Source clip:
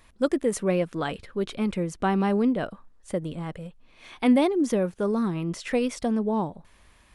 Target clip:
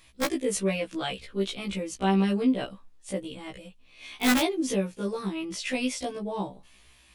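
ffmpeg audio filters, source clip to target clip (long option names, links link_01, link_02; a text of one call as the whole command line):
ffmpeg -i in.wav -af "highshelf=frequency=2000:width_type=q:width=1.5:gain=7,aeval=exprs='(mod(4.22*val(0)+1,2)-1)/4.22':channel_layout=same,afftfilt=real='re*1.73*eq(mod(b,3),0)':imag='im*1.73*eq(mod(b,3),0)':win_size=2048:overlap=0.75,volume=-1dB" out.wav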